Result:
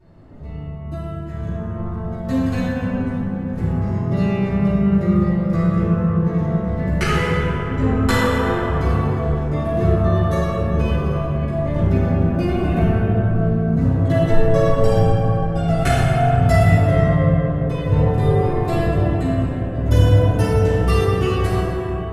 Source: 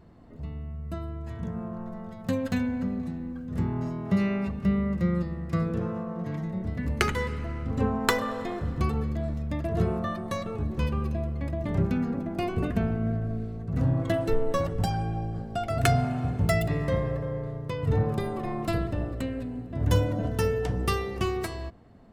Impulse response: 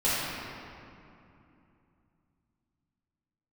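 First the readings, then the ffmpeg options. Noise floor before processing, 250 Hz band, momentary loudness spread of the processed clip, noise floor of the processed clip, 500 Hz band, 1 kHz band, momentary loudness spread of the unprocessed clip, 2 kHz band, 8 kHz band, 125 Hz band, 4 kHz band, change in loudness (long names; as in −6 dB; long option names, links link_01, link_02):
−39 dBFS, +9.5 dB, 8 LU, −28 dBFS, +10.5 dB, +9.0 dB, 9 LU, +8.5 dB, can't be measured, +11.5 dB, +6.0 dB, +10.5 dB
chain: -filter_complex "[1:a]atrim=start_sample=2205,asetrate=27783,aresample=44100[link_01];[0:a][link_01]afir=irnorm=-1:irlink=0,volume=-8.5dB"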